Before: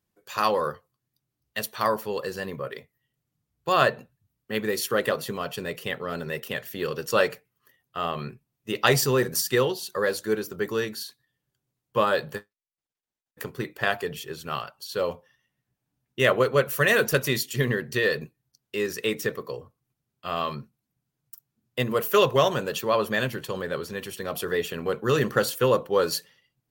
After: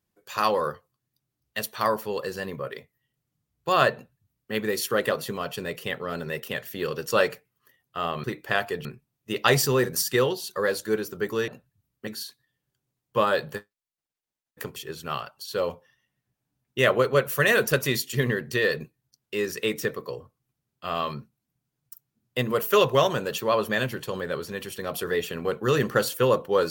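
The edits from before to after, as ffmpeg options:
-filter_complex "[0:a]asplit=6[a][b][c][d][e][f];[a]atrim=end=8.242[g];[b]atrim=start=13.558:end=14.172[h];[c]atrim=start=8.238:end=10.872[i];[d]atrim=start=3.938:end=4.532[j];[e]atrim=start=10.868:end=13.562[k];[f]atrim=start=14.168[l];[g][h]acrossfade=d=0.004:c1=hsin:c2=hsin[m];[m][i]acrossfade=d=0.004:c1=hsin:c2=hsin[n];[n][j]acrossfade=d=0.004:c1=hsin:c2=hsin[o];[o][k]acrossfade=d=0.004:c1=hsin:c2=hsin[p];[p][l]acrossfade=d=0.004:c1=hsin:c2=hsin"

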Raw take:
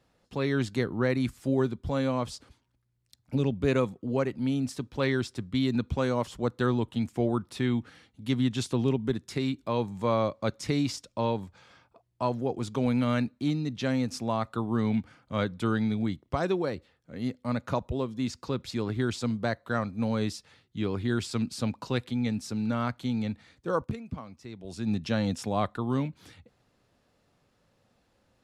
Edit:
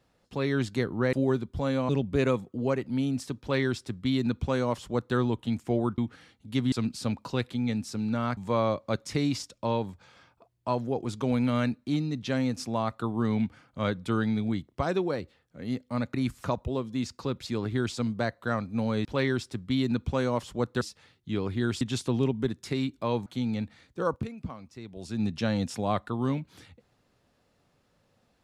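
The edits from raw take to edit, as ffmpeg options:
-filter_complex "[0:a]asplit=12[a][b][c][d][e][f][g][h][i][j][k][l];[a]atrim=end=1.132[m];[b]atrim=start=1.428:end=2.192[n];[c]atrim=start=3.378:end=7.472[o];[d]atrim=start=7.718:end=8.462[p];[e]atrim=start=21.288:end=22.942[q];[f]atrim=start=9.908:end=17.682[r];[g]atrim=start=1.128:end=1.432[s];[h]atrim=start=17.678:end=20.292[t];[i]atrim=start=4.888:end=6.652[u];[j]atrim=start=20.288:end=21.292[v];[k]atrim=start=8.458:end=9.912[w];[l]atrim=start=22.938[x];[m][n]acrossfade=d=0.004:c1=hsin:c2=hsin[y];[y][o]acrossfade=d=0.004:c1=hsin:c2=hsin[z];[z][p]acrossfade=d=0.004:c1=hsin:c2=hsin[aa];[aa][q]acrossfade=d=0.004:c1=hsin:c2=hsin[ab];[ab][r]acrossfade=d=0.004:c1=hsin:c2=hsin[ac];[ac][s]acrossfade=d=0.004:c1=hsin:c2=hsin[ad];[ad][t]acrossfade=d=0.004:c1=hsin:c2=hsin[ae];[ae][u]acrossfade=d=0.004:c1=hsin:c2=hsin[af];[af][v]acrossfade=d=0.004:c1=hsin:c2=hsin[ag];[ag][w]acrossfade=d=0.004:c1=hsin:c2=hsin[ah];[ah][x]acrossfade=d=0.004:c1=hsin:c2=hsin"

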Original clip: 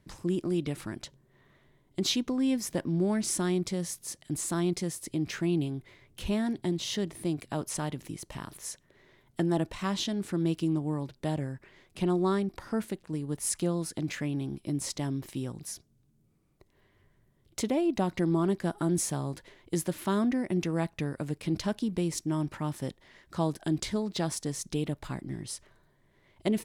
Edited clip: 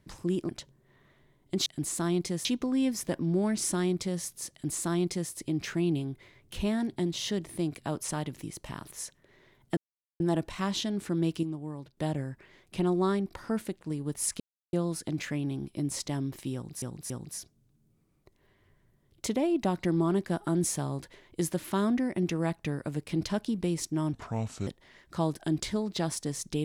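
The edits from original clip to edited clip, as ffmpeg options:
-filter_complex "[0:a]asplit=12[a][b][c][d][e][f][g][h][i][j][k][l];[a]atrim=end=0.492[m];[b]atrim=start=0.938:end=2.112[n];[c]atrim=start=4.178:end=4.972[o];[d]atrim=start=2.108:end=9.43,asetpts=PTS-STARTPTS,afade=t=out:st=7.318:d=0.004:c=hsin,apad=pad_dur=0.43[p];[e]atrim=start=9.43:end=10.662,asetpts=PTS-STARTPTS,afade=t=in:d=0.004:c=hsin[q];[f]atrim=start=10.658:end=11.202,asetpts=PTS-STARTPTS,volume=-7dB[r];[g]atrim=start=11.198:end=13.63,asetpts=PTS-STARTPTS,afade=t=out:st=2.428:d=0.004:c=hsin,apad=pad_dur=0.33[s];[h]atrim=start=13.63:end=15.722,asetpts=PTS-STARTPTS,afade=t=in:d=0.004:c=hsin[t];[i]atrim=start=15.438:end=15.722[u];[j]atrim=start=15.438:end=22.474[v];[k]atrim=start=22.47:end=22.87,asetpts=PTS-STARTPTS,asetrate=32634,aresample=44100[w];[l]atrim=start=22.866[x];[m][n]acrossfade=d=0.004:c1=hsin:c2=hsin[y];[y][o]acrossfade=d=0.004:c1=hsin:c2=hsin[z];[p][q]concat=n=2:v=0:a=1[aa];[z][aa]acrossfade=d=0.004:c1=hsin:c2=hsin[ab];[ab][r]acrossfade=d=0.004:c1=hsin:c2=hsin[ac];[s][t]concat=n=2:v=0:a=1[ad];[ac][ad]acrossfade=d=0.004:c1=hsin:c2=hsin[ae];[ae][u]acrossfade=d=0.004:c1=hsin:c2=hsin[af];[af][v]acrossfade=d=0.004:c1=hsin:c2=hsin[ag];[ag][w]acrossfade=d=0.004:c1=hsin:c2=hsin[ah];[ah][x]acrossfade=d=0.004:c1=hsin:c2=hsin"

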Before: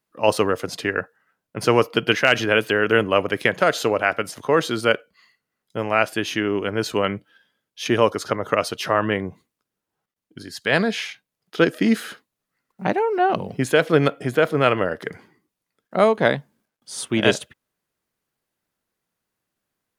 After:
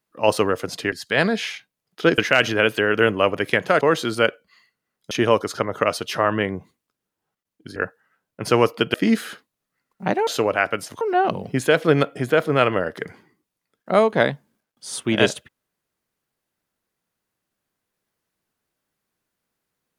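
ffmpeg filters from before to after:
-filter_complex "[0:a]asplit=9[a][b][c][d][e][f][g][h][i];[a]atrim=end=0.922[j];[b]atrim=start=10.468:end=11.732[k];[c]atrim=start=2.098:end=3.732[l];[d]atrim=start=4.468:end=5.772[m];[e]atrim=start=7.818:end=10.472[n];[f]atrim=start=0.918:end=2.102[o];[g]atrim=start=11.728:end=13.062[p];[h]atrim=start=3.728:end=4.472[q];[i]atrim=start=13.058[r];[j][k]acrossfade=d=0.004:c1=hsin:c2=hsin[s];[s][l]acrossfade=d=0.004:c1=hsin:c2=hsin[t];[t][m]acrossfade=d=0.004:c1=hsin:c2=hsin[u];[u][n]acrossfade=d=0.004:c1=hsin:c2=hsin[v];[v][o]acrossfade=d=0.004:c1=hsin:c2=hsin[w];[w][p]acrossfade=d=0.004:c1=hsin:c2=hsin[x];[x][q]acrossfade=d=0.004:c1=hsin:c2=hsin[y];[y][r]acrossfade=d=0.004:c1=hsin:c2=hsin"

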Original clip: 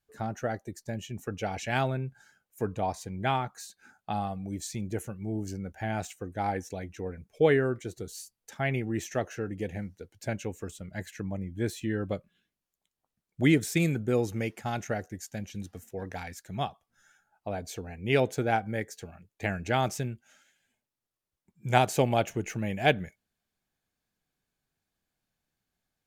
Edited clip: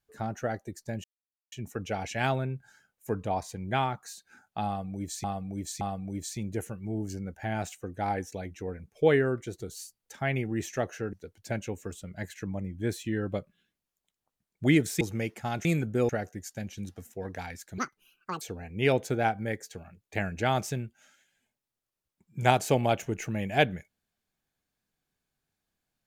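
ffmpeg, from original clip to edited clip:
-filter_complex "[0:a]asplit=10[a][b][c][d][e][f][g][h][i][j];[a]atrim=end=1.04,asetpts=PTS-STARTPTS,afade=t=out:st=1.036:d=0.004:c=hsin,apad=pad_dur=0.48[k];[b]atrim=start=1.04:end=4.762,asetpts=PTS-STARTPTS,afade=t=in:d=0.004:c=hsin[l];[c]atrim=start=4.188:end=4.762[m];[d]atrim=start=4.188:end=9.512[n];[e]atrim=start=9.898:end=13.782[o];[f]atrim=start=14.218:end=14.862[p];[g]atrim=start=13.778:end=14.222[q];[h]atrim=start=14.858:end=16.554[r];[i]atrim=start=16.55:end=17.69,asetpts=PTS-STARTPTS,asetrate=79380,aresample=44100[s];[j]atrim=start=17.686[t];[k][l]concat=n=2:v=0:a=1[u];[u][m]acrossfade=d=0.004:c1=hsin:c2=hsin[v];[v][n]acrossfade=d=0.004:c1=hsin:c2=hsin[w];[w][o]acrossfade=d=0.004:c1=hsin:c2=hsin[x];[x][p]acrossfade=d=0.004:c1=hsin:c2=hsin[y];[y][q]acrossfade=d=0.004:c1=hsin:c2=hsin[z];[z][r]acrossfade=d=0.004:c1=hsin:c2=hsin[aa];[aa][s]acrossfade=d=0.004:c1=hsin:c2=hsin[ab];[ab][t]acrossfade=d=0.004:c1=hsin:c2=hsin"

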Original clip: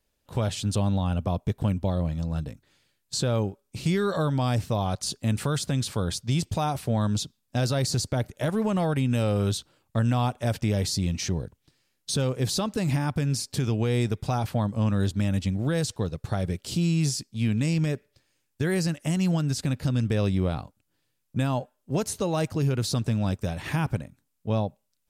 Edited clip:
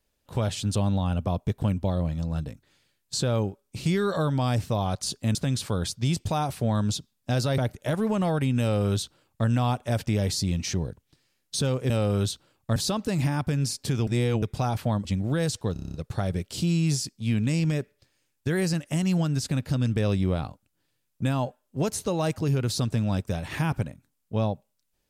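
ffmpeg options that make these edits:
-filter_complex "[0:a]asplit=15[a][b][c][d][e][f][g][h][i][j][k][l][m][n][o];[a]atrim=end=5.352[p];[b]atrim=start=5.608:end=7.842[q];[c]atrim=start=8.128:end=12.452[r];[d]atrim=start=9.158:end=10.022[s];[e]atrim=start=12.448:end=13.762[t];[f]atrim=start=13.758:end=14.112,asetpts=PTS-STARTPTS,areverse[u];[g]atrim=start=14.108:end=14.742[v];[h]atrim=start=15.398:end=16.112[w];[i]atrim=start=16.078:end=16.112[x];[j]atrim=start=16.078:end=16.112[y];[k]atrim=start=16.078:end=16.112[z];[l]atrim=start=16.078:end=16.112[aa];[m]atrim=start=16.078:end=16.112[ab];[n]atrim=start=16.078:end=16.112[ac];[o]atrim=start=16.078[ad];[p][q]acrossfade=d=0.004:c1=hsin:c2=hsin[ae];[ae][r]acrossfade=d=0.004:c1=hsin:c2=hsin[af];[af][s]acrossfade=d=0.004:c1=hsin:c2=hsin[ag];[ag][t]acrossfade=d=0.004:c1=hsin:c2=hsin[ah];[ah][u]acrossfade=d=0.004:c1=hsin:c2=hsin[ai];[ai][v]acrossfade=d=0.004:c1=hsin:c2=hsin[aj];[aj][w]acrossfade=d=0.004:c1=hsin:c2=hsin[ak];[ak][x]acrossfade=d=0.004:c1=hsin:c2=hsin[al];[al][y]acrossfade=d=0.004:c1=hsin:c2=hsin[am];[am][z]acrossfade=d=0.004:c1=hsin:c2=hsin[an];[an][aa]acrossfade=d=0.004:c1=hsin:c2=hsin[ao];[ao][ab]acrossfade=d=0.004:c1=hsin:c2=hsin[ap];[ap][ac]acrossfade=d=0.004:c1=hsin:c2=hsin[aq];[aq][ad]acrossfade=d=0.004:c1=hsin:c2=hsin"

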